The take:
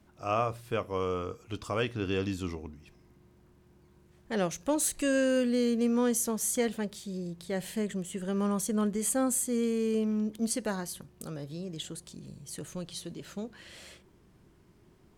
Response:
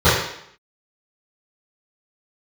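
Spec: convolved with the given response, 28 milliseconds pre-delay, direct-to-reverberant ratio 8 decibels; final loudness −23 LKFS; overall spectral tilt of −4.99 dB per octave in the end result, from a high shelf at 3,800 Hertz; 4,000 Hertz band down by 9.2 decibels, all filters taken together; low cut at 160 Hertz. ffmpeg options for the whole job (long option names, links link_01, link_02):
-filter_complex "[0:a]highpass=160,highshelf=frequency=3800:gain=-8.5,equalizer=frequency=4000:width_type=o:gain=-7.5,asplit=2[link_01][link_02];[1:a]atrim=start_sample=2205,adelay=28[link_03];[link_02][link_03]afir=irnorm=-1:irlink=0,volume=-34dB[link_04];[link_01][link_04]amix=inputs=2:normalize=0,volume=9dB"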